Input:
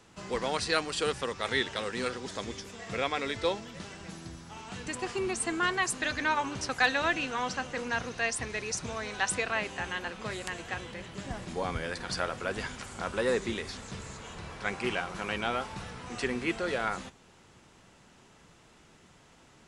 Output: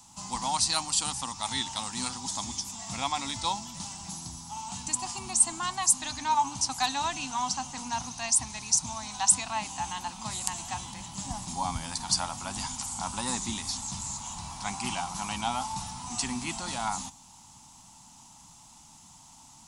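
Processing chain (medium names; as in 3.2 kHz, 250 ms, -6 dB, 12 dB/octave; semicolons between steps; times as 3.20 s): FFT filter 270 Hz 0 dB, 450 Hz -26 dB, 870 Hz +10 dB, 1.6 kHz -12 dB, 6.7 kHz +14 dB; in parallel at -3 dB: gain riding within 5 dB 2 s; on the sum: trim -5.5 dB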